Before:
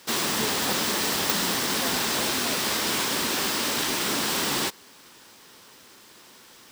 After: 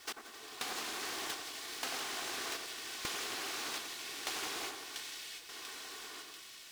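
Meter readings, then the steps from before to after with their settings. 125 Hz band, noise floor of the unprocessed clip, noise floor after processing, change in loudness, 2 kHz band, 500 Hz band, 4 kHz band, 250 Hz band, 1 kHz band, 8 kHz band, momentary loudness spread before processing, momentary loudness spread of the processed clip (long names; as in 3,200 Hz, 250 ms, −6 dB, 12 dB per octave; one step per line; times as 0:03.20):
−24.5 dB, −51 dBFS, −53 dBFS, −16.0 dB, −13.0 dB, −16.5 dB, −14.0 dB, −21.0 dB, −14.0 dB, −15.0 dB, 1 LU, 8 LU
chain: lower of the sound and its delayed copy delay 2.7 ms
meter weighting curve A
gate pattern "x....xxxxx" 123 BPM −24 dB
automatic gain control gain up to 7 dB
low-shelf EQ 230 Hz +7.5 dB
downward compressor 12 to 1, threshold −35 dBFS, peak gain reduction 18.5 dB
echo machine with several playback heads 87 ms, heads second and third, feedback 72%, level −16.5 dB
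pitch vibrato 3.2 Hz 18 cents
high-pass filter 56 Hz
echo with a time of its own for lows and highs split 1,800 Hz, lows 92 ms, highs 690 ms, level −4.5 dB
log-companded quantiser 4 bits
highs frequency-modulated by the lows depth 0.74 ms
level −3.5 dB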